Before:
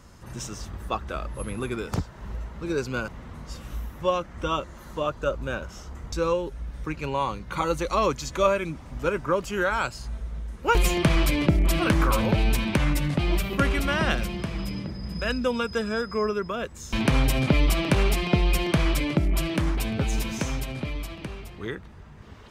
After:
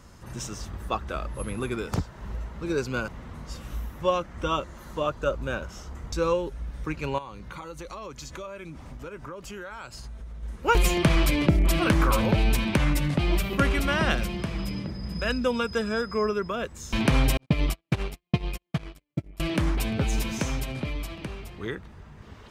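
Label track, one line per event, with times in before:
7.180000	10.430000	compression, threshold -36 dBFS
17.370000	19.400000	gate -19 dBFS, range -58 dB

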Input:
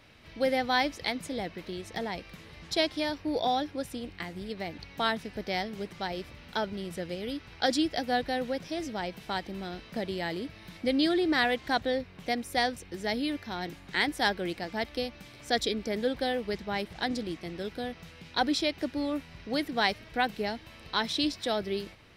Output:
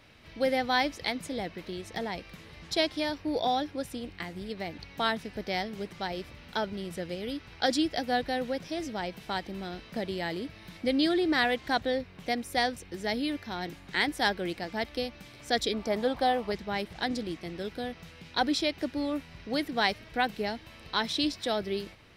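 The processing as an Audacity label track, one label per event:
15.730000	16.520000	high-order bell 890 Hz +9 dB 1.2 oct

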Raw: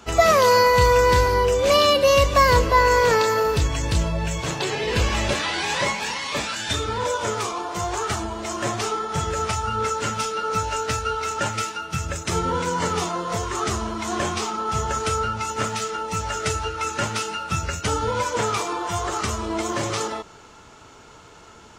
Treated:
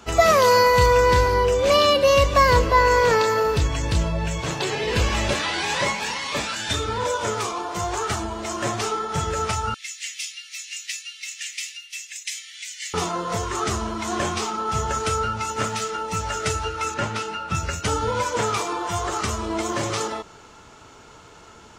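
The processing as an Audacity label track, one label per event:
0.860000	4.510000	treble shelf 7.9 kHz -5.5 dB
9.740000	12.940000	steep high-pass 1.9 kHz 72 dB/octave
16.940000	17.550000	low-pass 3.1 kHz 6 dB/octave

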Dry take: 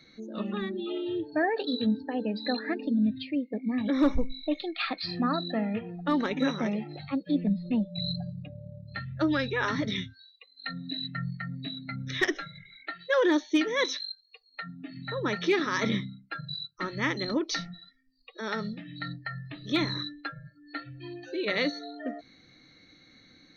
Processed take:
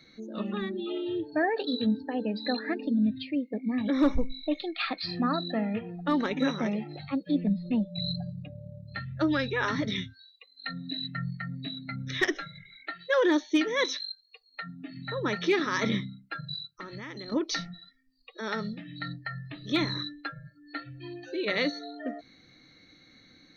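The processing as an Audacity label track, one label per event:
16.590000	17.320000	compression 16:1, threshold -36 dBFS

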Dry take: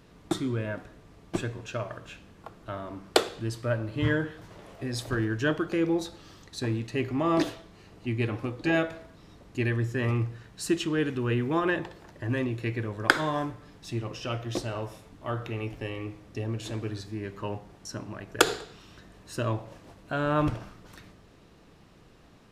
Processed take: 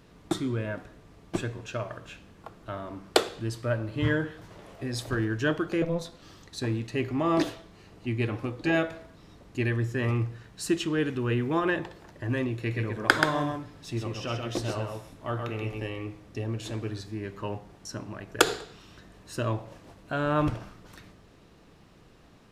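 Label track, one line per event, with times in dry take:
5.820000	6.220000	ring modulator 170 Hz
12.570000	15.860000	delay 130 ms -4.5 dB

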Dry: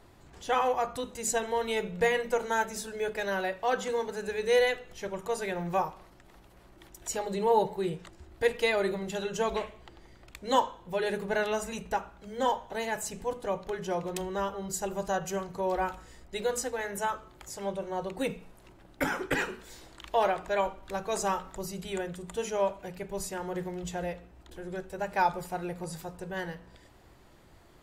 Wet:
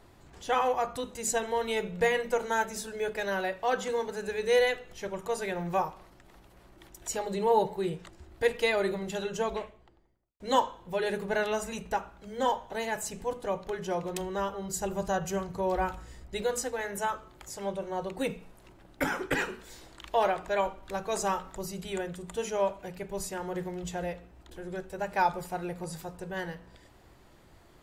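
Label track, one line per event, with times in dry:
9.170000	10.400000	studio fade out
14.760000	16.430000	peaking EQ 76 Hz +8 dB 2.2 oct

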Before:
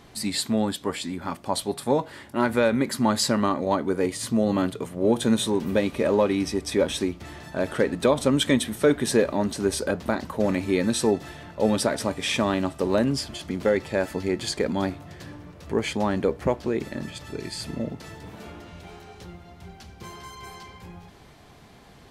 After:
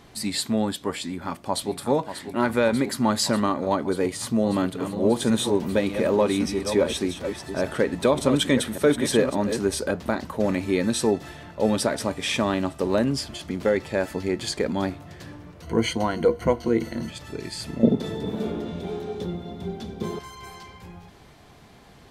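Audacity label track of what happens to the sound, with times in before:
1.010000	1.760000	echo throw 590 ms, feedback 85%, level -9.5 dB
4.140000	9.590000	chunks repeated in reverse 580 ms, level -8 dB
15.620000	17.100000	rippled EQ curve crests per octave 1.9, crest to trough 14 dB
17.830000	20.190000	small resonant body resonances 230/400/3500 Hz, height 17 dB, ringing for 25 ms

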